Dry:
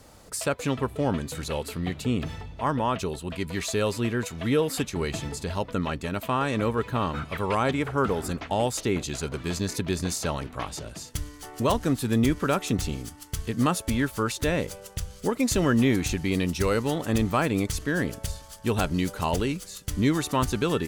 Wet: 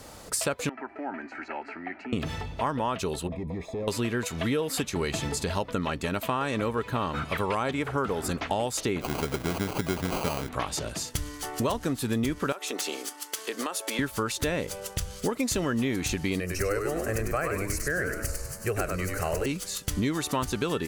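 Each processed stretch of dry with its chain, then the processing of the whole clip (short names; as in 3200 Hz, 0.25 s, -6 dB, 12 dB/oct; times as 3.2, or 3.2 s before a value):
0.69–2.13 compressor 5:1, threshold -27 dBFS + speaker cabinet 360–3200 Hz, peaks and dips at 400 Hz -4 dB, 590 Hz -5 dB, 1100 Hz +6 dB, 3000 Hz -8 dB + fixed phaser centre 730 Hz, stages 8
3.27–3.88 compressor 4:1, threshold -28 dBFS + hard clip -33 dBFS + running mean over 30 samples
9.01–10.49 HPF 43 Hz + sample-rate reducer 1800 Hz
12.52–13.99 HPF 360 Hz 24 dB/oct + compressor, threshold -32 dBFS
16.4–19.46 fixed phaser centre 950 Hz, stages 6 + frequency-shifting echo 99 ms, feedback 33%, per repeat -86 Hz, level -5 dB
whole clip: low shelf 230 Hz -5 dB; compressor 4:1, threshold -33 dBFS; gain +7 dB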